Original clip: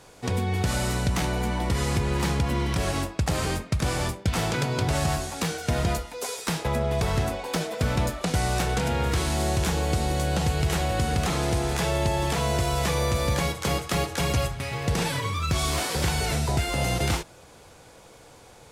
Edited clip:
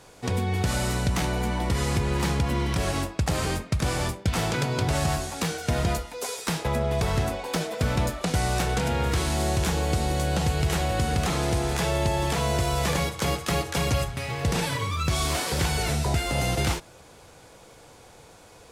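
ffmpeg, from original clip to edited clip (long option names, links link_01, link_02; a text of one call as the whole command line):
ffmpeg -i in.wav -filter_complex "[0:a]asplit=2[link_01][link_02];[link_01]atrim=end=12.932[link_03];[link_02]atrim=start=13.358[link_04];[link_03][link_04]acrossfade=duration=0.004:curve1=hsin:curve2=hsin" out.wav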